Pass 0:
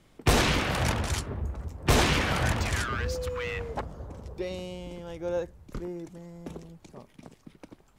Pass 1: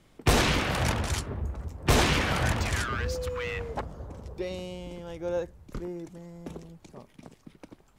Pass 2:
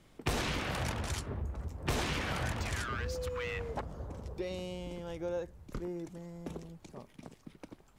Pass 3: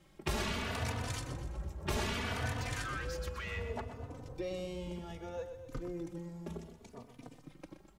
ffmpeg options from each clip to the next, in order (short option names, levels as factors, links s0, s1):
-af anull
-af "acompressor=threshold=0.0224:ratio=2.5,volume=0.841"
-filter_complex "[0:a]asplit=2[s0][s1];[s1]aecho=0:1:124|248|372|496|620:0.316|0.158|0.0791|0.0395|0.0198[s2];[s0][s2]amix=inputs=2:normalize=0,asplit=2[s3][s4];[s4]adelay=3.3,afreqshift=0.65[s5];[s3][s5]amix=inputs=2:normalize=1,volume=1.12"